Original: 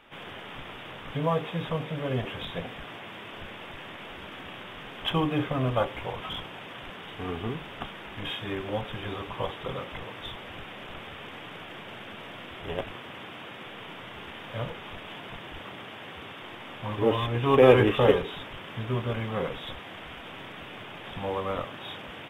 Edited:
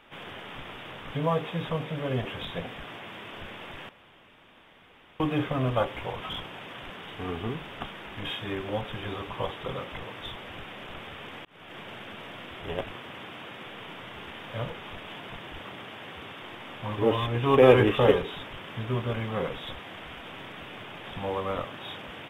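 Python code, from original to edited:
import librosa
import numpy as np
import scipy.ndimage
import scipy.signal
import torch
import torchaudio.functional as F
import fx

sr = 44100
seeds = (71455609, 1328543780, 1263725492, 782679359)

y = fx.edit(x, sr, fx.room_tone_fill(start_s=3.89, length_s=1.31),
    fx.fade_in_span(start_s=11.45, length_s=0.34), tone=tone)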